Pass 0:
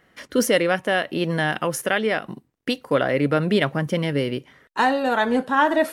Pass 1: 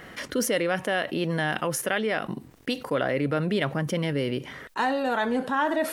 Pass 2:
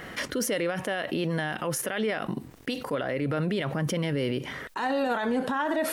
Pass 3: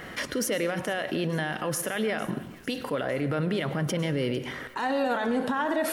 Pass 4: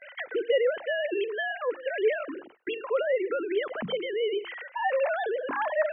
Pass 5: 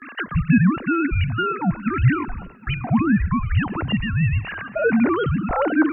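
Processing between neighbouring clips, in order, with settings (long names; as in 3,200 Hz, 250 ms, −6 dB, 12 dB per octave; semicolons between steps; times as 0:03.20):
envelope flattener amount 50%; level −7.5 dB
brickwall limiter −23 dBFS, peak gain reduction 11 dB; level +3.5 dB
delay with a high-pass on its return 452 ms, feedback 68%, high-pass 1,500 Hz, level −20 dB; on a send at −13 dB: convolution reverb RT60 0.85 s, pre-delay 93 ms
three sine waves on the formant tracks; mains-hum notches 50/100/150/200/250/300/350 Hz; noise gate with hold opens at −38 dBFS
frequency shifter −310 Hz; feedback echo with a long and a short gap by turns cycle 1,012 ms, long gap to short 3 to 1, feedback 31%, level −23 dB; level +8.5 dB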